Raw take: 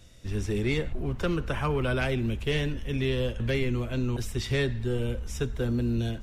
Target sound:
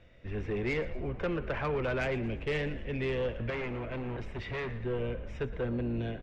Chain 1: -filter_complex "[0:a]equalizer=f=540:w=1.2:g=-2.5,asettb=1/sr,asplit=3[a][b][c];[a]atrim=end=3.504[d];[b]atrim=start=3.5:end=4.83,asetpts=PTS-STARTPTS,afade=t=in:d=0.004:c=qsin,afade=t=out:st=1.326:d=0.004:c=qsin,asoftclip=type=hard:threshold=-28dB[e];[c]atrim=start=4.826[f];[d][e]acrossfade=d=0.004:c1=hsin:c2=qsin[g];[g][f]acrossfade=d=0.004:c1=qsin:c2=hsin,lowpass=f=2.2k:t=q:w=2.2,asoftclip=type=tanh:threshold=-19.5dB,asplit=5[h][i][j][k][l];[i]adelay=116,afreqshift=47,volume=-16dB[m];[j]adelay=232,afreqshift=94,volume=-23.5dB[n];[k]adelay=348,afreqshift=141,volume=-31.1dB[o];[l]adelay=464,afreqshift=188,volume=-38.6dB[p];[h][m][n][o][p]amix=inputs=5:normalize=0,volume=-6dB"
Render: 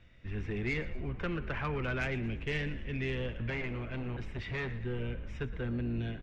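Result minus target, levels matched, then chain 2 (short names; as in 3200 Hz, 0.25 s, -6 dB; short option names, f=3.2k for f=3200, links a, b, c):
500 Hz band -4.5 dB
-filter_complex "[0:a]equalizer=f=540:w=1.2:g=7.5,asettb=1/sr,asplit=3[a][b][c];[a]atrim=end=3.504[d];[b]atrim=start=3.5:end=4.83,asetpts=PTS-STARTPTS,afade=t=in:d=0.004:c=qsin,afade=t=out:st=1.326:d=0.004:c=qsin,asoftclip=type=hard:threshold=-28dB[e];[c]atrim=start=4.826[f];[d][e]acrossfade=d=0.004:c1=hsin:c2=qsin[g];[g][f]acrossfade=d=0.004:c1=qsin:c2=hsin,lowpass=f=2.2k:t=q:w=2.2,asoftclip=type=tanh:threshold=-19.5dB,asplit=5[h][i][j][k][l];[i]adelay=116,afreqshift=47,volume=-16dB[m];[j]adelay=232,afreqshift=94,volume=-23.5dB[n];[k]adelay=348,afreqshift=141,volume=-31.1dB[o];[l]adelay=464,afreqshift=188,volume=-38.6dB[p];[h][m][n][o][p]amix=inputs=5:normalize=0,volume=-6dB"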